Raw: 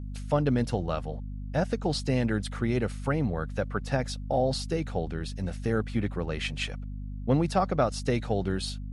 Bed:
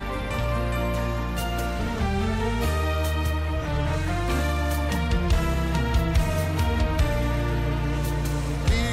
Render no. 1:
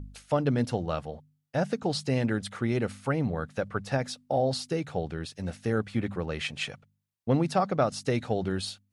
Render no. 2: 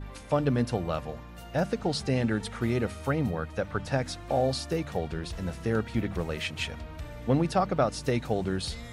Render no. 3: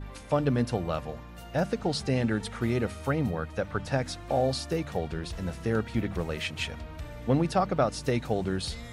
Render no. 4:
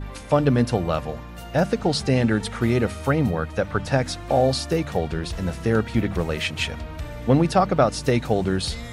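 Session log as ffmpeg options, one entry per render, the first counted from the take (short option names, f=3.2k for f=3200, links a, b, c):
-af "bandreject=f=50:t=h:w=4,bandreject=f=100:t=h:w=4,bandreject=f=150:t=h:w=4,bandreject=f=200:t=h:w=4,bandreject=f=250:t=h:w=4"
-filter_complex "[1:a]volume=-17.5dB[a];[0:a][a]amix=inputs=2:normalize=0"
-af anull
-af "volume=7dB"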